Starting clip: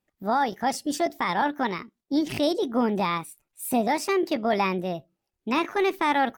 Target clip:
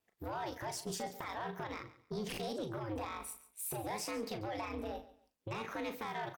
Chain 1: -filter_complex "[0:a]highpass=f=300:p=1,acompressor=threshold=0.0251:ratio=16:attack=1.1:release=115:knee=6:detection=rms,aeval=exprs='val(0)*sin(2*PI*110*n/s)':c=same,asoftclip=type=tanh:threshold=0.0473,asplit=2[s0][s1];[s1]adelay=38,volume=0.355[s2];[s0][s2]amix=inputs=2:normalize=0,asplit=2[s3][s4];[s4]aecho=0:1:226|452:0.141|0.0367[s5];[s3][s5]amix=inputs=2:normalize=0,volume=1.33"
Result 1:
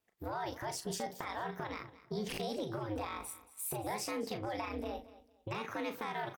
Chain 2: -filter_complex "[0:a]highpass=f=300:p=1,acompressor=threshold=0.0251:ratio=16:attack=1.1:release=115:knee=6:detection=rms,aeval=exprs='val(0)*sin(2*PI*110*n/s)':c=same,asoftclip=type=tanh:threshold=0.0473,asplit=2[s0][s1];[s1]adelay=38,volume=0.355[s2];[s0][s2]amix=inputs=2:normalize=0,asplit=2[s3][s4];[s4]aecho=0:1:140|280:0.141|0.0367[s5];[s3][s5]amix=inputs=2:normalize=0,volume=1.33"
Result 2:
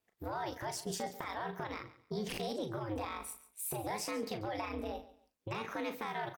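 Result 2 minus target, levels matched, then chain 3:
saturation: distortion -12 dB
-filter_complex "[0:a]highpass=f=300:p=1,acompressor=threshold=0.0251:ratio=16:attack=1.1:release=115:knee=6:detection=rms,aeval=exprs='val(0)*sin(2*PI*110*n/s)':c=same,asoftclip=type=tanh:threshold=0.0188,asplit=2[s0][s1];[s1]adelay=38,volume=0.355[s2];[s0][s2]amix=inputs=2:normalize=0,asplit=2[s3][s4];[s4]aecho=0:1:140|280:0.141|0.0367[s5];[s3][s5]amix=inputs=2:normalize=0,volume=1.33"

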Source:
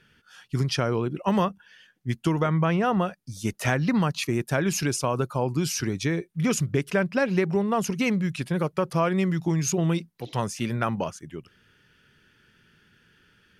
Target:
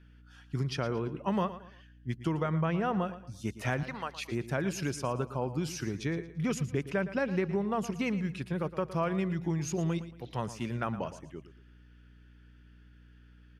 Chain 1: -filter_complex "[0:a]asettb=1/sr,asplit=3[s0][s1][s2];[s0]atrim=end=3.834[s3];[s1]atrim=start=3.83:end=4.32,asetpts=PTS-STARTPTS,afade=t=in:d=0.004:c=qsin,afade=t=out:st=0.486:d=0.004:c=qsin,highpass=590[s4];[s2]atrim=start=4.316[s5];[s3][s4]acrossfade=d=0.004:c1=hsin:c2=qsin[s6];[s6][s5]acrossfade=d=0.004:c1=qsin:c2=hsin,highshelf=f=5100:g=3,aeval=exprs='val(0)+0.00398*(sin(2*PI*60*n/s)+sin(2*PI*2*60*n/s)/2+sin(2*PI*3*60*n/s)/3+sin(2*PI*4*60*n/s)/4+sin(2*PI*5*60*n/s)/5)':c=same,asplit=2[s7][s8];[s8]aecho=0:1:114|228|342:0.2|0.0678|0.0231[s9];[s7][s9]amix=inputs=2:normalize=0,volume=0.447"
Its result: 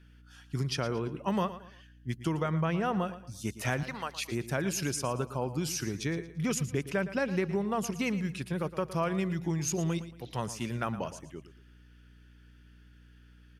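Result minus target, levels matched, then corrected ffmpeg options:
8 kHz band +7.0 dB
-filter_complex "[0:a]asettb=1/sr,asplit=3[s0][s1][s2];[s0]atrim=end=3.834[s3];[s1]atrim=start=3.83:end=4.32,asetpts=PTS-STARTPTS,afade=t=in:d=0.004:c=qsin,afade=t=out:st=0.486:d=0.004:c=qsin,highpass=590[s4];[s2]atrim=start=4.316[s5];[s3][s4]acrossfade=d=0.004:c1=hsin:c2=qsin[s6];[s6][s5]acrossfade=d=0.004:c1=qsin:c2=hsin,highshelf=f=5100:g=-8.5,aeval=exprs='val(0)+0.00398*(sin(2*PI*60*n/s)+sin(2*PI*2*60*n/s)/2+sin(2*PI*3*60*n/s)/3+sin(2*PI*4*60*n/s)/4+sin(2*PI*5*60*n/s)/5)':c=same,asplit=2[s7][s8];[s8]aecho=0:1:114|228|342:0.2|0.0678|0.0231[s9];[s7][s9]amix=inputs=2:normalize=0,volume=0.447"

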